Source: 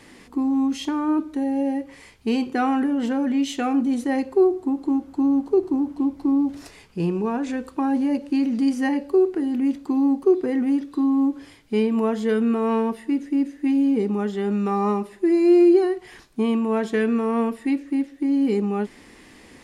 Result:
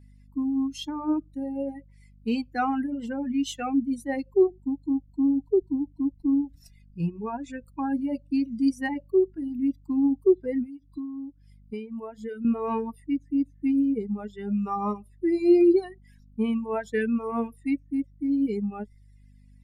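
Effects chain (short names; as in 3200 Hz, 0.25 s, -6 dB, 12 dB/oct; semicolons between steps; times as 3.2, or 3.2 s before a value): per-bin expansion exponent 2; hum 50 Hz, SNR 26 dB; 10.65–12.45 compressor 8:1, threshold -32 dBFS, peak gain reduction 12.5 dB; reverb removal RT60 0.69 s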